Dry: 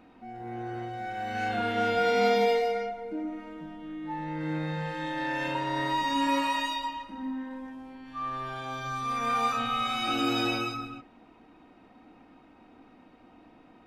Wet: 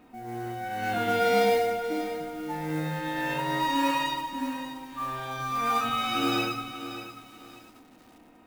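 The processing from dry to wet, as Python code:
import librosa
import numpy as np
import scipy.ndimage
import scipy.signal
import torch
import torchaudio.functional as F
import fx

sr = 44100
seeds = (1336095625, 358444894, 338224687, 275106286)

y = fx.mod_noise(x, sr, seeds[0], snr_db=20)
y = fx.stretch_vocoder(y, sr, factor=0.61)
y = fx.echo_crushed(y, sr, ms=588, feedback_pct=35, bits=8, wet_db=-11.0)
y = y * 10.0 ** (1.5 / 20.0)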